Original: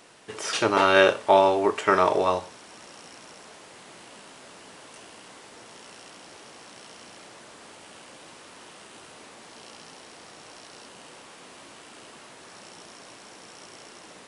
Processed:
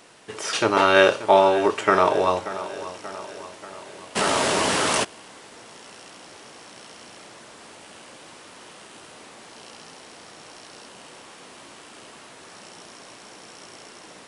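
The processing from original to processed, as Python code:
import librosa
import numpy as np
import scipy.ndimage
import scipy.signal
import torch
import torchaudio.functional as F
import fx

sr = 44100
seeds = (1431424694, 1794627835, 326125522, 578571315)

p1 = x + fx.echo_feedback(x, sr, ms=583, feedback_pct=56, wet_db=-15.0, dry=0)
p2 = fx.env_flatten(p1, sr, amount_pct=70, at=(4.15, 5.03), fade=0.02)
y = F.gain(torch.from_numpy(p2), 2.0).numpy()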